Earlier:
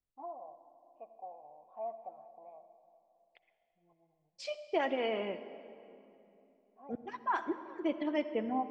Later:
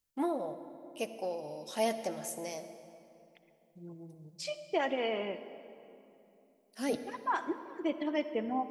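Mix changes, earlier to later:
first voice: remove formant resonators in series a
master: remove high-frequency loss of the air 110 metres

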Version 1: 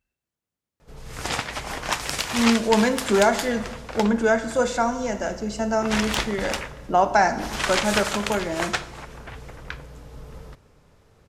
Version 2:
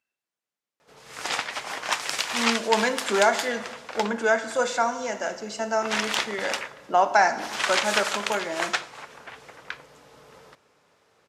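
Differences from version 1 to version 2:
background: send off
master: add meter weighting curve A

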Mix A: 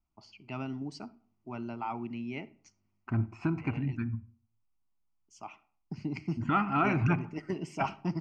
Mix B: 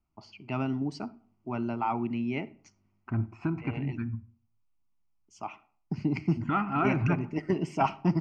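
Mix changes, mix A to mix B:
first voice +7.0 dB
master: add high-shelf EQ 3,600 Hz −8 dB

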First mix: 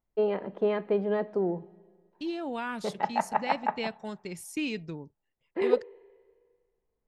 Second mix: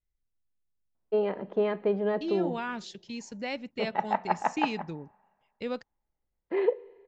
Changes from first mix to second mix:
first voice: entry +0.95 s
master: add Butterworth low-pass 7,500 Hz 96 dB per octave

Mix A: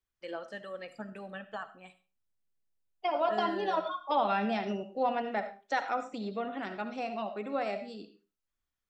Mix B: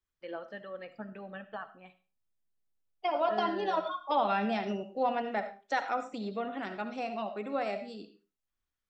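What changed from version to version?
first voice: add high-frequency loss of the air 230 metres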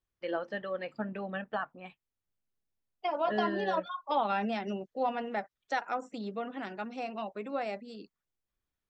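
first voice +7.5 dB
reverb: off

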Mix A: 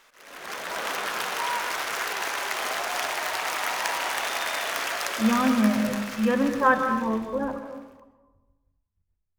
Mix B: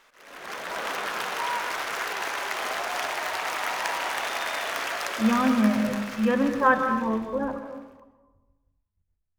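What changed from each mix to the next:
background: add high-shelf EQ 4,300 Hz −5.5 dB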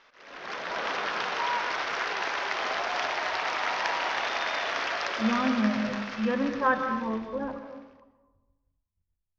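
speech −4.5 dB
master: add Butterworth low-pass 5,800 Hz 48 dB per octave

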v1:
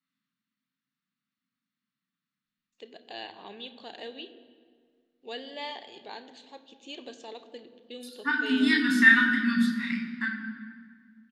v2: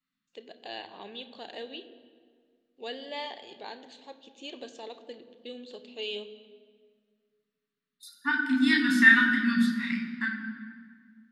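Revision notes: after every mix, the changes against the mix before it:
first voice: entry −2.45 s
master: add parametric band 560 Hz +2.5 dB 0.42 octaves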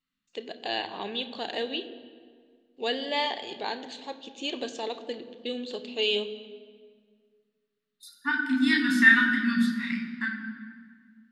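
first voice +9.5 dB
master: add parametric band 560 Hz −2.5 dB 0.42 octaves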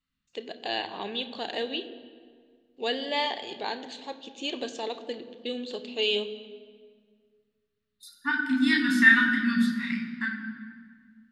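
second voice: remove high-pass filter 170 Hz 24 dB per octave

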